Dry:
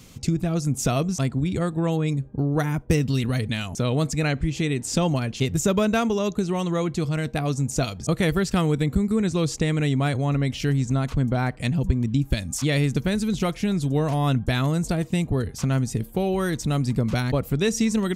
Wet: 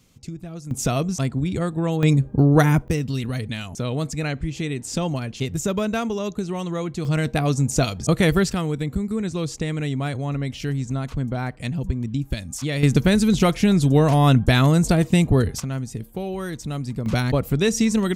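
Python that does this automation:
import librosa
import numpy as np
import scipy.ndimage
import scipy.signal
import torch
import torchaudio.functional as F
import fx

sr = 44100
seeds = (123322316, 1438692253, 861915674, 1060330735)

y = fx.gain(x, sr, db=fx.steps((0.0, -11.0), (0.71, 0.5), (2.03, 8.0), (2.88, -2.5), (7.05, 4.0), (8.53, -3.0), (12.83, 6.5), (15.6, -5.0), (17.06, 2.5)))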